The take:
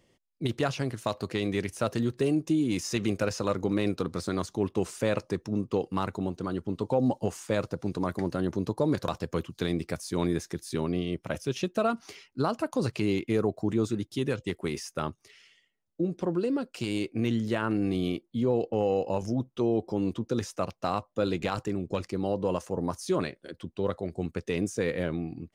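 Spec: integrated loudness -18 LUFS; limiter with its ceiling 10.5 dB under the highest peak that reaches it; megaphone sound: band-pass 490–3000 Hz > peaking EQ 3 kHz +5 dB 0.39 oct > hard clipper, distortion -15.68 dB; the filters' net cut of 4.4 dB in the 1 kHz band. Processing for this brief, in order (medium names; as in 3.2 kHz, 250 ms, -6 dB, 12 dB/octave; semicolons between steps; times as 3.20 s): peaking EQ 1 kHz -5.5 dB; peak limiter -25.5 dBFS; band-pass 490–3000 Hz; peaking EQ 3 kHz +5 dB 0.39 oct; hard clipper -35 dBFS; trim +26 dB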